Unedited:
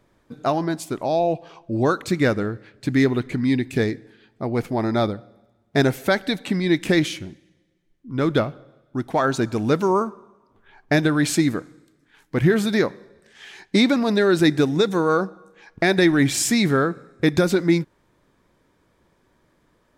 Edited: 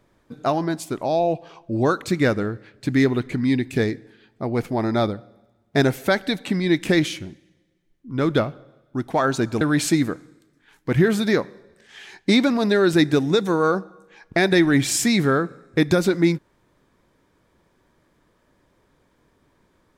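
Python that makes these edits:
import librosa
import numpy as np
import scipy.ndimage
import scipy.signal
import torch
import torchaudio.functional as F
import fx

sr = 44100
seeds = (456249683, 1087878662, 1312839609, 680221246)

y = fx.edit(x, sr, fx.cut(start_s=9.61, length_s=1.46), tone=tone)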